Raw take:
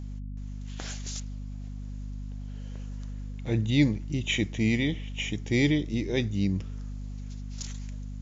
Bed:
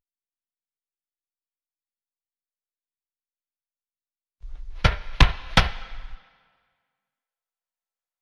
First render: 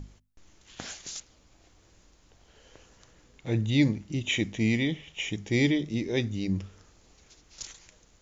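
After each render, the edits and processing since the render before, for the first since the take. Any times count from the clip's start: hum notches 50/100/150/200/250 Hz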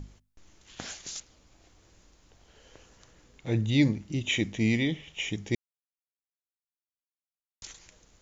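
5.55–7.62 s: mute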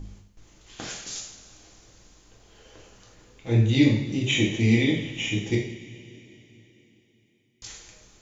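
two-slope reverb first 0.6 s, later 3.8 s, from -18 dB, DRR -3 dB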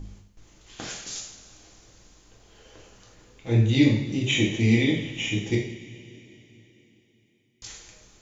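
no audible change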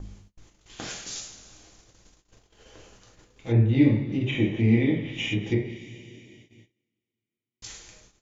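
gate -52 dBFS, range -24 dB; low-pass that closes with the level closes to 1.7 kHz, closed at -21 dBFS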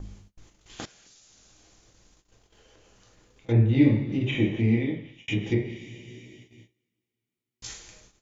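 0.85–3.49 s: compression 10:1, threshold -53 dBFS; 4.53–5.28 s: fade out; 6.06–7.74 s: doubling 16 ms -3.5 dB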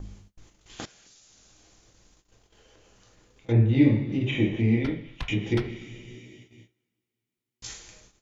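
add bed -20 dB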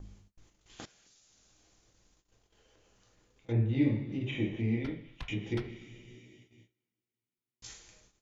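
trim -8.5 dB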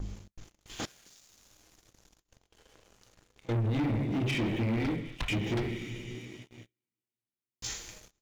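peak limiter -25.5 dBFS, peak gain reduction 8.5 dB; waveshaping leveller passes 3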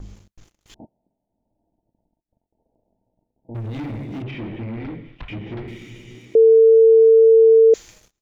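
0.74–3.55 s: rippled Chebyshev low-pass 930 Hz, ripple 9 dB; 4.22–5.68 s: distance through air 320 m; 6.35–7.74 s: bleep 449 Hz -7.5 dBFS

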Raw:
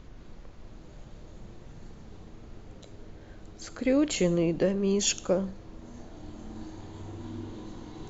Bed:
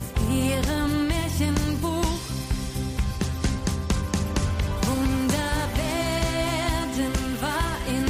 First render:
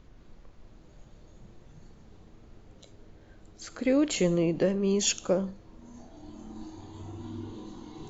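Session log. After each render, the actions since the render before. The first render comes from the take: noise print and reduce 6 dB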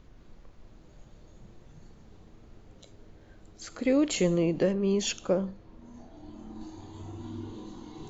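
3.71–4.14 s: band-stop 1.6 kHz, Q 11; 4.73–6.61 s: distance through air 91 m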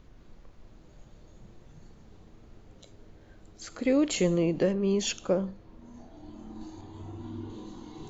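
6.81–7.50 s: treble shelf 5.2 kHz -10 dB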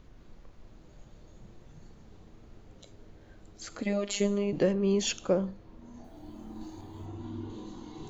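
3.82–4.53 s: robot voice 202 Hz; 6.04–7.06 s: word length cut 12-bit, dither none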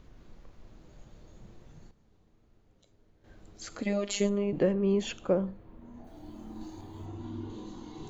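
1.45–3.70 s: dip -12.5 dB, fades 0.46 s logarithmic; 4.29–6.07 s: peaking EQ 5.6 kHz -13.5 dB 1.2 oct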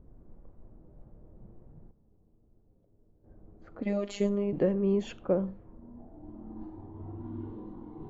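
level-controlled noise filter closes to 600 Hz, open at -26 dBFS; treble shelf 2.1 kHz -11 dB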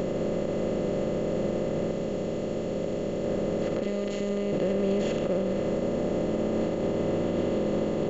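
spectral levelling over time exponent 0.2; peak limiter -18.5 dBFS, peak gain reduction 8.5 dB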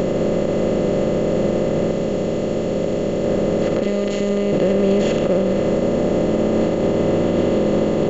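trim +9.5 dB

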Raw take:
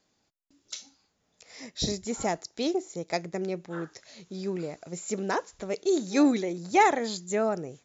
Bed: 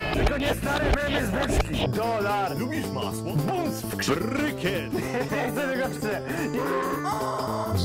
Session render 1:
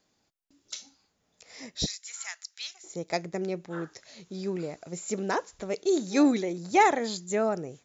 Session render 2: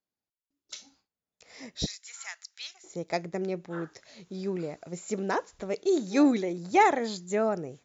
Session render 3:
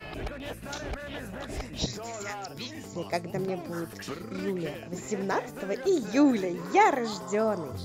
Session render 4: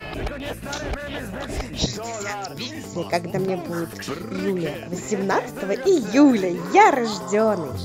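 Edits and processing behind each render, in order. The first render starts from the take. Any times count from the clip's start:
1.86–2.84 s: high-pass 1.5 kHz 24 dB/octave
gate with hold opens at -53 dBFS; treble shelf 5 kHz -7 dB
add bed -13 dB
trim +7.5 dB

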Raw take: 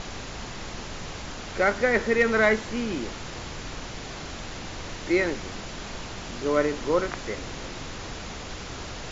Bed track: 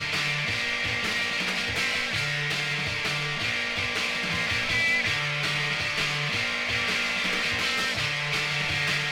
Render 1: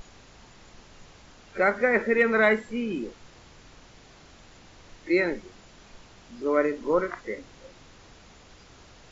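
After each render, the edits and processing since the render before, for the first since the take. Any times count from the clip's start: noise print and reduce 15 dB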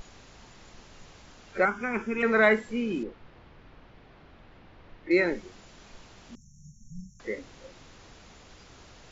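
1.65–2.23 s: static phaser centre 2.8 kHz, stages 8; 3.03–5.11 s: distance through air 350 m; 6.35–7.20 s: brick-wall FIR band-stop 210–5400 Hz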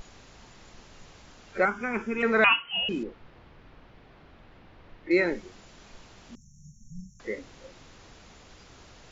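2.44–2.89 s: frequency inversion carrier 3.1 kHz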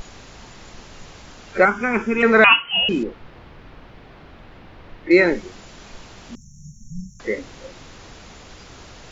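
trim +9.5 dB; peak limiter -2 dBFS, peak gain reduction 2.5 dB

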